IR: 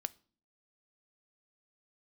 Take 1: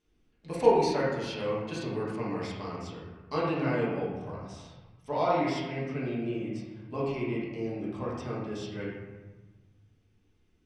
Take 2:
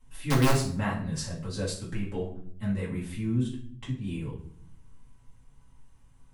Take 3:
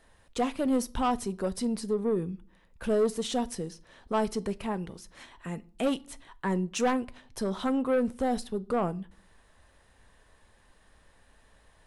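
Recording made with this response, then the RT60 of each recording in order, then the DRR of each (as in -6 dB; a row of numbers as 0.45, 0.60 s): 3; 1.3, 0.60, 0.45 s; -7.5, -8.0, 15.0 dB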